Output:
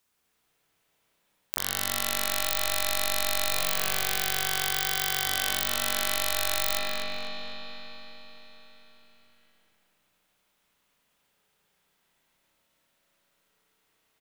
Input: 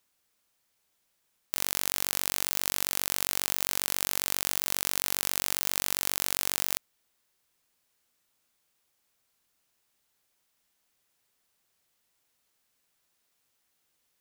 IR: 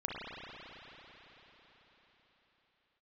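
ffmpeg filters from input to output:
-filter_complex "[0:a]asettb=1/sr,asplit=3[s0][s1][s2];[s0]atrim=end=3.514[s3];[s1]atrim=start=3.51:end=5.26,asetpts=PTS-STARTPTS,afade=t=in:d=0.004:c=qsin,afade=t=out:st=1.746:d=0.004:c=qsin,afreqshift=49[s4];[s2]atrim=start=5.256[s5];[s3][s4]acrossfade=d=0.004:c1=hsin:c2=qsin[s6];[s6][s5]acrossfade=d=0.004:c1=qsin:c2=hsin,asplit=2[s7][s8];[s8]adelay=250,lowpass=f=3900:p=1,volume=0.631,asplit=2[s9][s10];[s10]adelay=250,lowpass=f=3900:p=1,volume=0.48,asplit=2[s11][s12];[s12]adelay=250,lowpass=f=3900:p=1,volume=0.48,asplit=2[s13][s14];[s14]adelay=250,lowpass=f=3900:p=1,volume=0.48,asplit=2[s15][s16];[s16]adelay=250,lowpass=f=3900:p=1,volume=0.48,asplit=2[s17][s18];[s18]adelay=250,lowpass=f=3900:p=1,volume=0.48[s19];[s7][s9][s11][s13][s15][s17][s19]amix=inputs=7:normalize=0[s20];[1:a]atrim=start_sample=2205[s21];[s20][s21]afir=irnorm=-1:irlink=0,volume=1.12"

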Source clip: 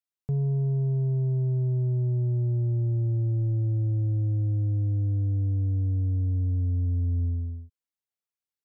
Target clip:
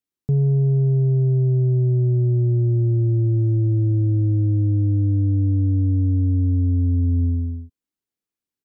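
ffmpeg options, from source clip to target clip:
-af "firequalizer=gain_entry='entry(110,0);entry(280,8);entry(590,-5)':delay=0.05:min_phase=1,volume=2.11"

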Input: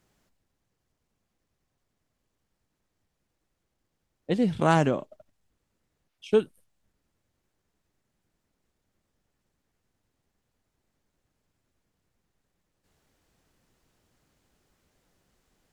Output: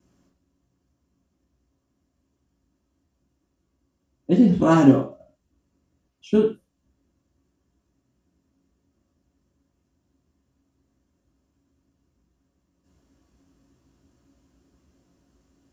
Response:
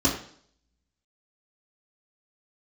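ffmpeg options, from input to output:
-filter_complex "[0:a]asettb=1/sr,asplit=3[s0][s1][s2];[s0]atrim=end=4.764[s3];[s1]atrim=start=4.76:end=6.34,asetpts=PTS-STARTPTS,afade=t=in:d=0.004:c=qsin,afade=t=out:st=1.576:d=0.004:c=qsin,acrusher=bits=8:mode=log:mix=0:aa=0.000001[s4];[s2]atrim=start=6.336[s5];[s3][s4]acrossfade=d=0.004:c1=hsin:c2=qsin[s6];[s6][s5]acrossfade=d=0.004:c1=qsin:c2=hsin[s7];[1:a]atrim=start_sample=2205,afade=t=out:st=0.19:d=0.01,atrim=end_sample=8820[s8];[s7][s8]afir=irnorm=-1:irlink=0,volume=0.251"

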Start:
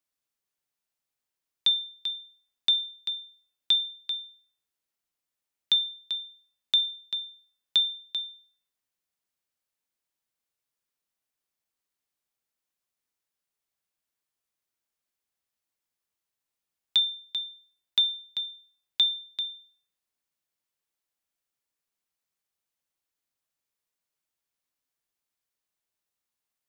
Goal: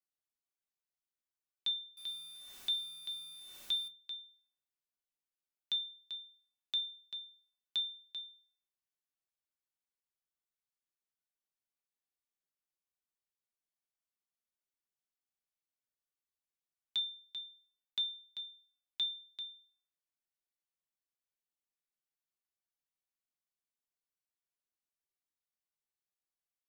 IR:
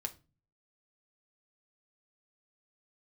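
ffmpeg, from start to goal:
-filter_complex "[0:a]asettb=1/sr,asplit=3[s0][s1][s2];[s0]atrim=end=1.974[s3];[s1]atrim=start=1.97:end=3.88,asetpts=PTS-STARTPTS,afade=t=in:d=0.004:c=qsin,afade=t=out:st=1.906:d=0.004:c=qsin,aeval=exprs='val(0)+0.5*0.0188*sgn(val(0))':c=same[s4];[s2]atrim=start=3.876[s5];[s3][s4]acrossfade=d=0.004:c1=hsin:c2=qsin[s6];[s6][s5]acrossfade=d=0.004:c1=qsin:c2=hsin[s7];[1:a]atrim=start_sample=2205,asetrate=74970,aresample=44100[s8];[s7][s8]afir=irnorm=-1:irlink=0,volume=0.473"

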